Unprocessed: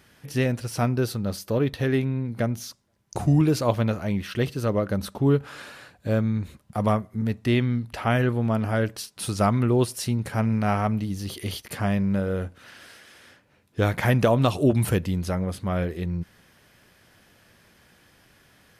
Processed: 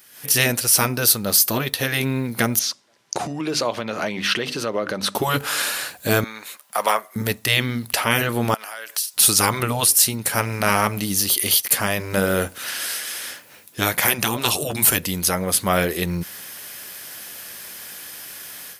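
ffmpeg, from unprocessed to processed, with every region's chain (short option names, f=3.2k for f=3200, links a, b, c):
-filter_complex "[0:a]asettb=1/sr,asplit=3[a][b][c];[a]atrim=end=2.594[d];[b]atrim=start=2.59:end=5.15,asetpts=PTS-STARTPTS,afade=t=in:d=0.004:c=qsin,afade=t=out:st=2.556:d=0.004:c=qsin,bandreject=f=50:t=h:w=6,bandreject=f=100:t=h:w=6,bandreject=f=150:t=h:w=6,bandreject=f=200:t=h:w=6,bandreject=f=250:t=h:w=6,bandreject=f=300:t=h:w=6,acompressor=threshold=-29dB:ratio=12:attack=3.2:release=140:knee=1:detection=peak,highpass=150,lowpass=4.3k[e];[c]atrim=start=5.146[f];[d][e]acrossfade=d=0.004:c1=hsin:c2=qsin[g];[g][f]acrossfade=d=0.004:c1=qsin:c2=hsin,asettb=1/sr,asplit=3[h][i][j];[h]atrim=end=6.244[k];[i]atrim=start=6.24:end=7.16,asetpts=PTS-STARTPTS,afade=t=in:d=0.004:c=qsin,afade=t=out:st=0.916:d=0.004:c=qsin,highpass=780,highshelf=f=3.7k:g=-8.5[l];[j]atrim=start=7.156[m];[k][l]acrossfade=d=0.004:c1=hsin:c2=qsin[n];[n][m]acrossfade=d=0.004:c1=qsin:c2=hsin,asettb=1/sr,asplit=3[o][p][q];[o]atrim=end=8.544[r];[p]atrim=start=8.54:end=9.14,asetpts=PTS-STARTPTS,afade=t=in:d=0.004:c=qsin,afade=t=out:st=0.596:d=0.004:c=qsin,highpass=930,acompressor=threshold=-45dB:ratio=6:attack=3.2:release=140:knee=1:detection=peak[s];[q]atrim=start=9.136[t];[r][s]acrossfade=d=0.004:c1=hsin:c2=qsin[u];[u][t]acrossfade=d=0.004:c1=qsin:c2=hsin,aemphasis=mode=production:type=riaa,afftfilt=real='re*lt(hypot(re,im),0.251)':imag='im*lt(hypot(re,im),0.251)':win_size=1024:overlap=0.75,dynaudnorm=f=130:g=3:m=15dB,volume=-1dB"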